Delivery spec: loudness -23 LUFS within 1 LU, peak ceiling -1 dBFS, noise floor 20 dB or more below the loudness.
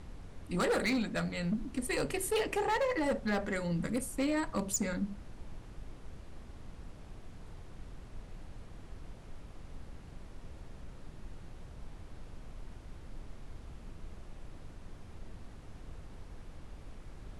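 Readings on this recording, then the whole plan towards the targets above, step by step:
clipped samples 0.9%; clipping level -26.0 dBFS; noise floor -51 dBFS; noise floor target -53 dBFS; loudness -33.0 LUFS; peak level -26.0 dBFS; loudness target -23.0 LUFS
-> clip repair -26 dBFS; noise print and reduce 6 dB; trim +10 dB

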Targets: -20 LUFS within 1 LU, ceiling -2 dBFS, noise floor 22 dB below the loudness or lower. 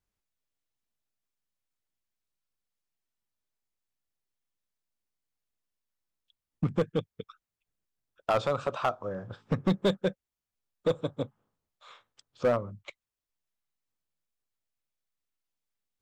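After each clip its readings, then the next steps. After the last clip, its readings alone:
clipped samples 0.4%; clipping level -19.0 dBFS; loudness -31.0 LUFS; peak level -19.0 dBFS; loudness target -20.0 LUFS
-> clip repair -19 dBFS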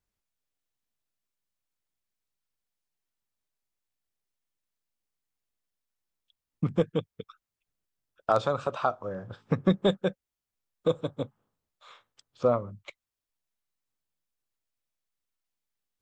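clipped samples 0.0%; loudness -29.5 LUFS; peak level -10.0 dBFS; loudness target -20.0 LUFS
-> trim +9.5 dB; peak limiter -2 dBFS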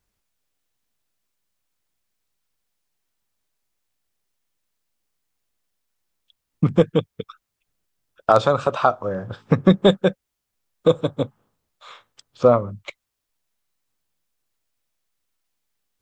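loudness -20.0 LUFS; peak level -2.0 dBFS; noise floor -80 dBFS

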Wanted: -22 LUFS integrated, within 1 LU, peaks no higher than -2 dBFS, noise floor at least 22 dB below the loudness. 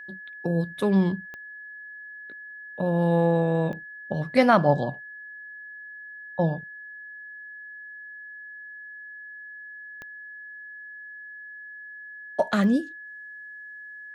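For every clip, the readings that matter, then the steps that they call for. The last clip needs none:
clicks found 4; steady tone 1.7 kHz; tone level -39 dBFS; loudness -24.5 LUFS; peak level -5.5 dBFS; loudness target -22.0 LUFS
-> de-click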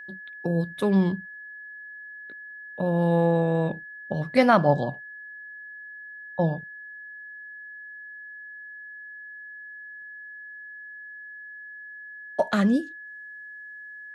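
clicks found 0; steady tone 1.7 kHz; tone level -39 dBFS
-> band-stop 1.7 kHz, Q 30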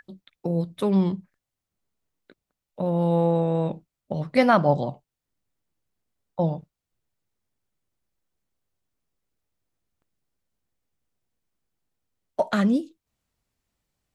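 steady tone not found; loudness -24.0 LUFS; peak level -5.5 dBFS; loudness target -22.0 LUFS
-> trim +2 dB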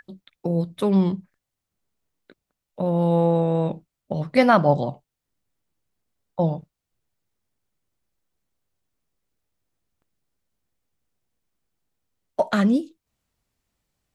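loudness -22.0 LUFS; peak level -3.5 dBFS; noise floor -84 dBFS

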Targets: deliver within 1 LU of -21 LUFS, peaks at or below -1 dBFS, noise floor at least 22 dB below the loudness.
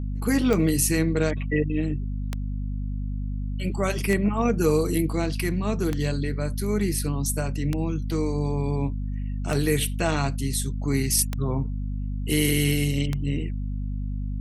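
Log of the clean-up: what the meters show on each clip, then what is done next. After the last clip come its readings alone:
clicks found 8; hum 50 Hz; highest harmonic 250 Hz; hum level -26 dBFS; loudness -25.5 LUFS; peak level -9.0 dBFS; loudness target -21.0 LUFS
-> de-click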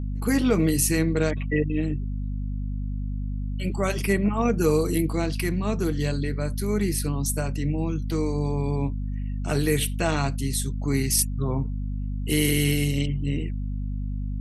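clicks found 0; hum 50 Hz; highest harmonic 250 Hz; hum level -26 dBFS
-> de-hum 50 Hz, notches 5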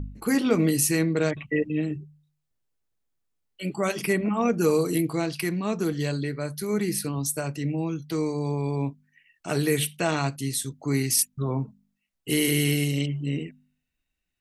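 hum not found; loudness -26.0 LUFS; peak level -8.5 dBFS; loudness target -21.0 LUFS
-> trim +5 dB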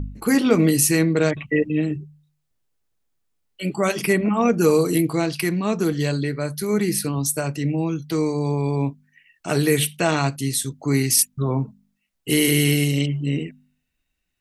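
loudness -21.0 LUFS; peak level -3.5 dBFS; noise floor -75 dBFS

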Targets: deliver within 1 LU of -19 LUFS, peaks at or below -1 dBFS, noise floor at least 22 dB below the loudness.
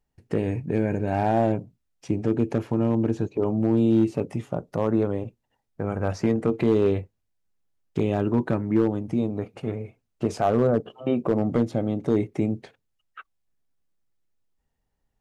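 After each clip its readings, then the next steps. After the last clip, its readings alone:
clipped samples 0.4%; clipping level -12.5 dBFS; loudness -25.0 LUFS; peak level -12.5 dBFS; loudness target -19.0 LUFS
-> clip repair -12.5 dBFS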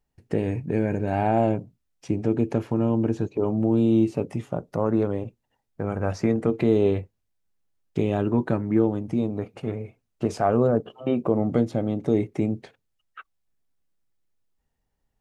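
clipped samples 0.0%; loudness -25.0 LUFS; peak level -8.0 dBFS; loudness target -19.0 LUFS
-> trim +6 dB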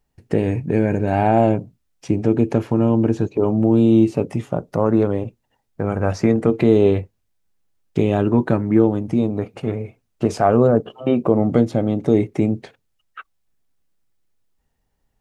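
loudness -19.0 LUFS; peak level -2.0 dBFS; noise floor -71 dBFS

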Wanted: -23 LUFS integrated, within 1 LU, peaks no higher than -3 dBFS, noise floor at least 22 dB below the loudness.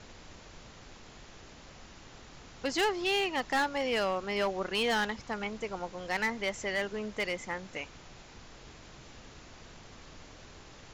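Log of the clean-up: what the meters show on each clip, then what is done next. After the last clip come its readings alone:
clipped samples 0.8%; clipping level -24.0 dBFS; noise floor -52 dBFS; noise floor target -54 dBFS; loudness -32.0 LUFS; peak level -24.0 dBFS; loudness target -23.0 LUFS
-> clip repair -24 dBFS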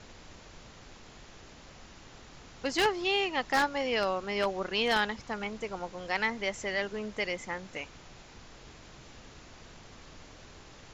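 clipped samples 0.0%; noise floor -52 dBFS; noise floor target -53 dBFS
-> noise print and reduce 6 dB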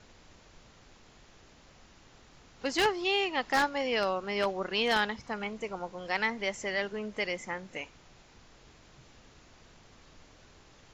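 noise floor -58 dBFS; loudness -31.0 LUFS; peak level -15.0 dBFS; loudness target -23.0 LUFS
-> trim +8 dB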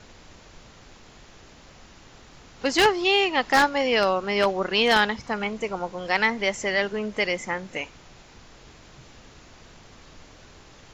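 loudness -23.0 LUFS; peak level -7.0 dBFS; noise floor -50 dBFS

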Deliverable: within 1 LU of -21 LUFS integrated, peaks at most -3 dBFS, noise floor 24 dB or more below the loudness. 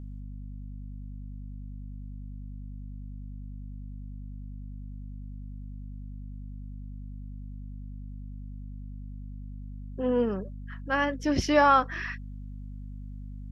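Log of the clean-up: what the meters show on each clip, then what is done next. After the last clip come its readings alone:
hum 50 Hz; highest harmonic 250 Hz; hum level -37 dBFS; loudness -33.0 LUFS; peak level -10.0 dBFS; loudness target -21.0 LUFS
-> de-hum 50 Hz, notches 5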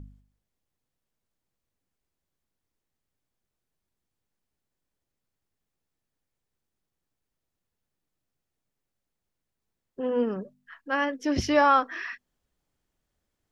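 hum not found; loudness -25.5 LUFS; peak level -9.5 dBFS; loudness target -21.0 LUFS
-> trim +4.5 dB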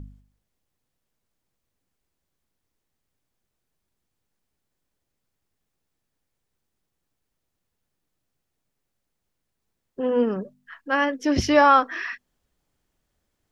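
loudness -21.0 LUFS; peak level -5.0 dBFS; noise floor -80 dBFS

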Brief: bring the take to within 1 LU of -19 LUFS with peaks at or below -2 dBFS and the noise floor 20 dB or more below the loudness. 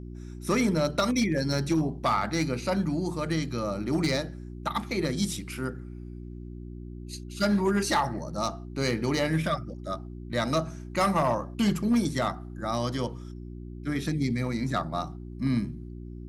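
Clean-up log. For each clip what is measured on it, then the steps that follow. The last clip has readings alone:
clipped samples 0.6%; clipping level -18.0 dBFS; hum 60 Hz; highest harmonic 360 Hz; hum level -37 dBFS; loudness -28.5 LUFS; peak level -18.0 dBFS; loudness target -19.0 LUFS
-> clip repair -18 dBFS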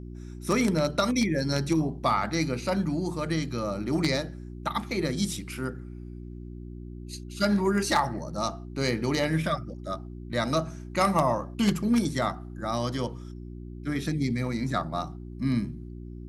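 clipped samples 0.0%; hum 60 Hz; highest harmonic 360 Hz; hum level -37 dBFS
-> de-hum 60 Hz, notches 6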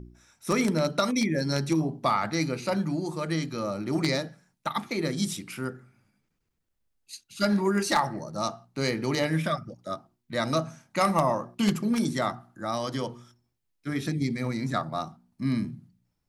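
hum not found; loudness -28.5 LUFS; peak level -8.5 dBFS; loudness target -19.0 LUFS
-> trim +9.5 dB; peak limiter -2 dBFS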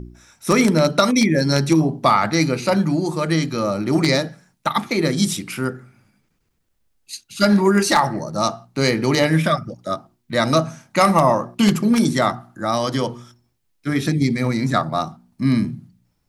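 loudness -19.0 LUFS; peak level -2.0 dBFS; noise floor -68 dBFS

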